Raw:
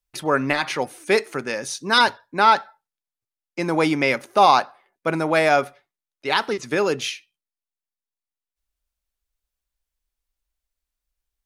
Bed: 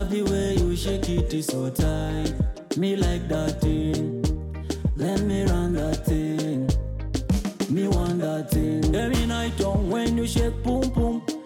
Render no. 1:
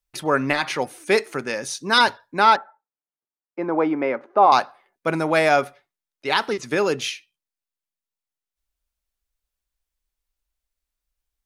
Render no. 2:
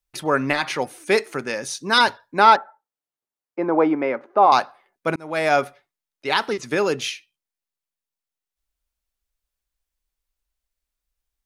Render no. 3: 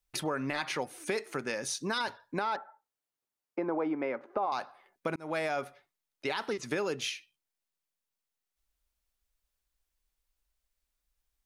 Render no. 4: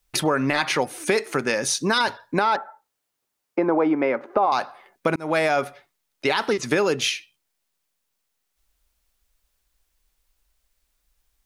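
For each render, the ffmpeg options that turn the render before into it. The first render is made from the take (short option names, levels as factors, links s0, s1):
-filter_complex "[0:a]asettb=1/sr,asplit=3[s0][s1][s2];[s0]atrim=end=2.564[s3];[s1]atrim=start=2.56:end=4.52,asetpts=PTS-STARTPTS,afade=t=in:d=0.004:c=qsin,afade=t=out:st=1.956:d=0.004:c=qsin,asuperpass=centerf=580:order=4:qfactor=0.51[s4];[s2]atrim=start=4.516[s5];[s3][s4]acrossfade=d=0.004:c1=hsin:c2=qsin[s6];[s6][s5]acrossfade=d=0.004:c1=qsin:c2=hsin"
-filter_complex "[0:a]asettb=1/sr,asplit=3[s0][s1][s2];[s0]atrim=end=2.374[s3];[s1]atrim=start=2.37:end=3.95,asetpts=PTS-STARTPTS,afade=t=in:d=0.004:c=qsin,afade=t=out:st=1.576:d=0.004:c=qsin,equalizer=f=560:t=o:w=2.5:g=3.5[s4];[s2]atrim=start=3.946[s5];[s3][s4]acrossfade=d=0.004:c1=hsin:c2=qsin[s6];[s6][s5]acrossfade=d=0.004:c1=qsin:c2=hsin,asplit=2[s7][s8];[s7]atrim=end=5.16,asetpts=PTS-STARTPTS,afade=t=out:st=5.156:d=0.004:c=hsin[s9];[s8]atrim=start=5.16,asetpts=PTS-STARTPTS,afade=t=in:d=0.4[s10];[s9][s10]concat=n=2:v=0:a=1"
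-af "alimiter=limit=0.299:level=0:latency=1:release=35,acompressor=threshold=0.0224:ratio=3"
-af "volume=3.76"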